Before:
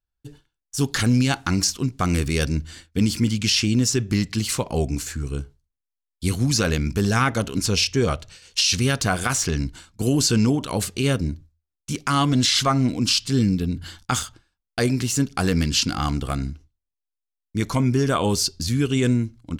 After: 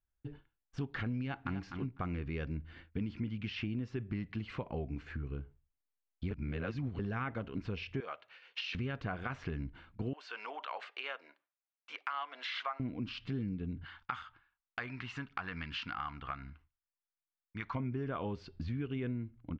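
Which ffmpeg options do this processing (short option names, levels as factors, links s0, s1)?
-filter_complex "[0:a]asplit=2[s0][s1];[s1]afade=t=in:st=1.2:d=0.01,afade=t=out:st=1.61:d=0.01,aecho=0:1:250|500:0.281838|0.0422757[s2];[s0][s2]amix=inputs=2:normalize=0,asettb=1/sr,asplit=3[s3][s4][s5];[s3]atrim=end=8.004[s6];[s4]atrim=start=8:end=8.75,asetpts=PTS-STARTPTS,afade=t=in:d=0.004:c=qsin,afade=t=out:st=0.746:d=0.004:c=qsin,highpass=750[s7];[s5]atrim=start=8.746[s8];[s6][s7]acrossfade=d=0.004:c1=hsin:c2=qsin[s9];[s9][s8]acrossfade=d=0.004:c1=qsin:c2=hsin,asettb=1/sr,asplit=3[s10][s11][s12];[s10]atrim=end=10.134[s13];[s11]atrim=start=10.13:end=12.8,asetpts=PTS-STARTPTS,afade=t=in:d=0.004:c=qsin,afade=t=out:st=2.666:d=0.004:c=qsin,highpass=f=710:w=0.5412,highpass=f=710:w=1.3066[s14];[s12]atrim=start=12.796[s15];[s13][s14]acrossfade=d=0.004:c1=hsin:c2=qsin[s16];[s16][s15]acrossfade=d=0.004:c1=qsin:c2=hsin,asettb=1/sr,asplit=3[s17][s18][s19];[s17]atrim=end=13.854[s20];[s18]atrim=start=13.85:end=17.75,asetpts=PTS-STARTPTS,afade=t=in:d=0.004:c=qsin,afade=t=out:st=3.896:d=0.004:c=qsin,lowshelf=f=710:t=q:w=1.5:g=-13[s21];[s19]atrim=start=17.746[s22];[s20][s21]acrossfade=d=0.004:c1=hsin:c2=qsin[s23];[s23][s22]acrossfade=d=0.004:c1=qsin:c2=hsin,asplit=3[s24][s25][s26];[s24]atrim=end=6.312[s27];[s25]atrim=start=6.308:end=6.992,asetpts=PTS-STARTPTS,areverse[s28];[s26]atrim=start=6.988[s29];[s27][s28]acrossfade=d=0.004:c1=hsin:c2=hsin[s30];[s30][s29]acrossfade=d=0.004:c1=hsin:c2=hsin,lowpass=f=2600:w=0.5412,lowpass=f=2600:w=1.3066,acompressor=threshold=0.0158:ratio=3,volume=0.708"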